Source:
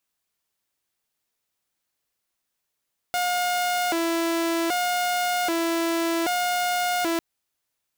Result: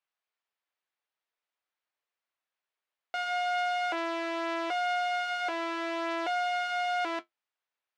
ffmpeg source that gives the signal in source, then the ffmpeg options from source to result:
-f lavfi -i "aevalsrc='0.106*(2*mod((524*t+191/0.64*(0.5-abs(mod(0.64*t,1)-0.5))),1)-1)':duration=4.05:sample_rate=44100"
-af "flanger=delay=8.5:depth=2.1:regen=-55:speed=0.47:shape=triangular,highpass=550,lowpass=2900"

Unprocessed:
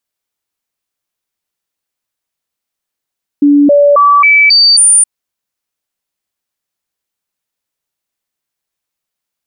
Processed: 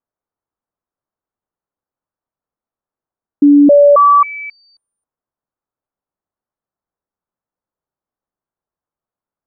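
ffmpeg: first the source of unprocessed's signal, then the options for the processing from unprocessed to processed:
-f lavfi -i "aevalsrc='0.708*clip(min(mod(t,0.27),0.27-mod(t,0.27))/0.005,0,1)*sin(2*PI*288*pow(2,floor(t/0.27)/1)*mod(t,0.27))':duration=1.62:sample_rate=44100"
-af "lowpass=frequency=1300:width=0.5412,lowpass=frequency=1300:width=1.3066"

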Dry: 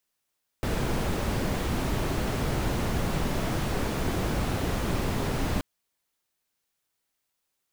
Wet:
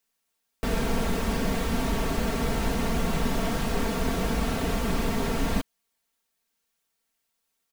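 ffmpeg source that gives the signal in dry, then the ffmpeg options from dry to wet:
-f lavfi -i "anoisesrc=color=brown:amplitude=0.209:duration=4.98:sample_rate=44100:seed=1"
-af "aecho=1:1:4.4:0.69"

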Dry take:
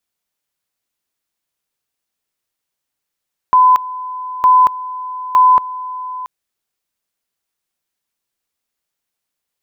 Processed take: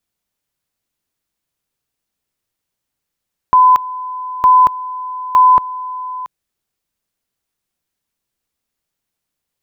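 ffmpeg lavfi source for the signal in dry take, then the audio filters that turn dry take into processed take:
-f lavfi -i "aevalsrc='pow(10,(-5.5-17*gte(mod(t,0.91),0.23))/20)*sin(2*PI*1010*t)':duration=2.73:sample_rate=44100"
-af "lowshelf=frequency=300:gain=9"

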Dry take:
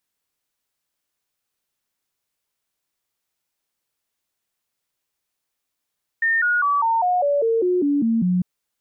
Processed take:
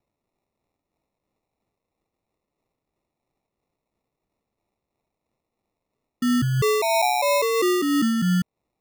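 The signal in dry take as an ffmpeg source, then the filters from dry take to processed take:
-f lavfi -i "aevalsrc='0.158*clip(min(mod(t,0.2),0.2-mod(t,0.2))/0.005,0,1)*sin(2*PI*1820*pow(2,-floor(t/0.2)/3)*mod(t,0.2))':duration=2.2:sample_rate=44100"
-af "acrusher=samples=28:mix=1:aa=0.000001,tremolo=f=3:d=0.31"

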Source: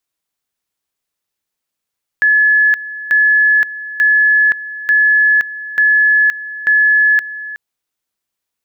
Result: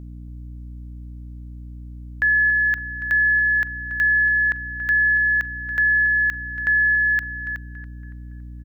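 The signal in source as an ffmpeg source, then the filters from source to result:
-f lavfi -i "aevalsrc='pow(10,(-7.5-16*gte(mod(t,0.89),0.52))/20)*sin(2*PI*1710*t)':duration=5.34:sample_rate=44100"
-filter_complex "[0:a]alimiter=limit=-14dB:level=0:latency=1:release=29,aeval=exprs='val(0)+0.0178*(sin(2*PI*60*n/s)+sin(2*PI*2*60*n/s)/2+sin(2*PI*3*60*n/s)/3+sin(2*PI*4*60*n/s)/4+sin(2*PI*5*60*n/s)/5)':channel_layout=same,asplit=2[link_01][link_02];[link_02]adelay=281,lowpass=frequency=2000:poles=1,volume=-10.5dB,asplit=2[link_03][link_04];[link_04]adelay=281,lowpass=frequency=2000:poles=1,volume=0.51,asplit=2[link_05][link_06];[link_06]adelay=281,lowpass=frequency=2000:poles=1,volume=0.51,asplit=2[link_07][link_08];[link_08]adelay=281,lowpass=frequency=2000:poles=1,volume=0.51,asplit=2[link_09][link_10];[link_10]adelay=281,lowpass=frequency=2000:poles=1,volume=0.51,asplit=2[link_11][link_12];[link_12]adelay=281,lowpass=frequency=2000:poles=1,volume=0.51[link_13];[link_01][link_03][link_05][link_07][link_09][link_11][link_13]amix=inputs=7:normalize=0"

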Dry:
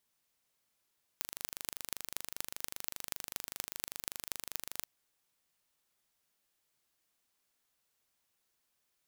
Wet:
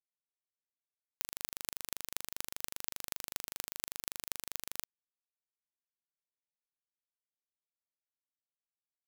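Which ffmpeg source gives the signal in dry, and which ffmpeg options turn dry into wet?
-f lavfi -i "aevalsrc='0.447*eq(mod(n,1757),0)*(0.5+0.5*eq(mod(n,10542),0))':duration=3.63:sample_rate=44100"
-af "acrusher=bits=7:mix=0:aa=0.000001"

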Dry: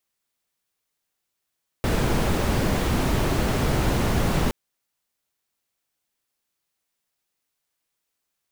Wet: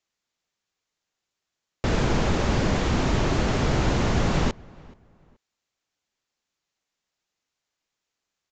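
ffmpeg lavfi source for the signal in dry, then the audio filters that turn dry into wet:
-f lavfi -i "anoisesrc=color=brown:amplitude=0.394:duration=2.67:sample_rate=44100:seed=1"
-filter_complex "[0:a]asplit=2[link_01][link_02];[link_02]adelay=427,lowpass=frequency=2400:poles=1,volume=-24dB,asplit=2[link_03][link_04];[link_04]adelay=427,lowpass=frequency=2400:poles=1,volume=0.3[link_05];[link_01][link_03][link_05]amix=inputs=3:normalize=0,aresample=16000,aresample=44100"

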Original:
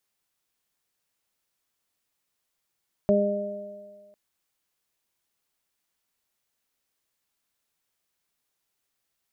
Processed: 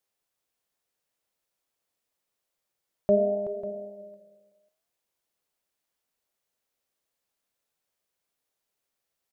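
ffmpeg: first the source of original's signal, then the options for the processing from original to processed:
-f lavfi -i "aevalsrc='0.0944*pow(10,-3*t/1.38)*sin(2*PI*203*t)+0.0708*pow(10,-3*t/1.34)*sin(2*PI*406*t)+0.119*pow(10,-3*t/1.83)*sin(2*PI*609*t)':duration=1.05:sample_rate=44100"
-af "equalizer=frequency=550:width=1.3:gain=6.5,flanger=delay=9.7:depth=6.6:regen=84:speed=0.85:shape=sinusoidal,aecho=1:1:377|545:0.224|0.15"

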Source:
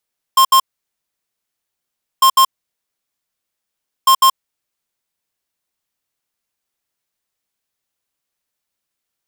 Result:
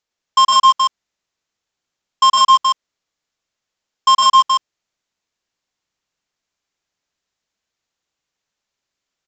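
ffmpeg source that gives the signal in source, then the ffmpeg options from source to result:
-f lavfi -i "aevalsrc='0.355*(2*lt(mod(1060*t,1),0.5)-1)*clip(min(mod(mod(t,1.85),0.15),0.08-mod(mod(t,1.85),0.15))/0.005,0,1)*lt(mod(t,1.85),0.3)':duration=5.55:sample_rate=44100"
-af "aecho=1:1:110.8|274.1:0.708|0.631,aresample=16000,aresample=44100"

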